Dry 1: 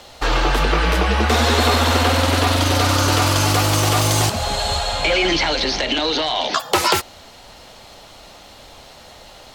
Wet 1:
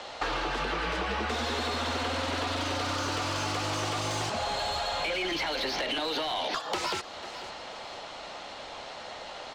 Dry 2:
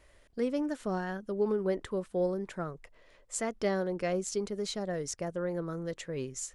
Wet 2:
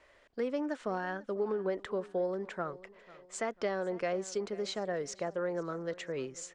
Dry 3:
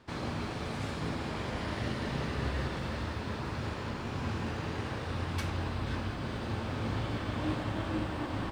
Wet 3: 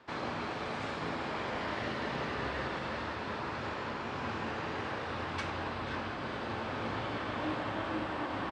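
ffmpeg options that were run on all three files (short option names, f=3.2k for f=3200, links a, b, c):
-filter_complex "[0:a]lowpass=f=8.7k:w=0.5412,lowpass=f=8.7k:w=1.3066,acrossover=split=380|3000[a][b][c];[b]acompressor=threshold=-23dB:ratio=6[d];[a][d][c]amix=inputs=3:normalize=0,asplit=2[e][f];[f]highpass=f=720:p=1,volume=20dB,asoftclip=type=tanh:threshold=-2.5dB[g];[e][g]amix=inputs=2:normalize=0,lowpass=f=1.9k:p=1,volume=-6dB,asplit=2[h][i];[i]aecho=0:1:494|988|1482:0.0891|0.0339|0.0129[j];[h][j]amix=inputs=2:normalize=0,acompressor=threshold=-20dB:ratio=6,volume=-8.5dB"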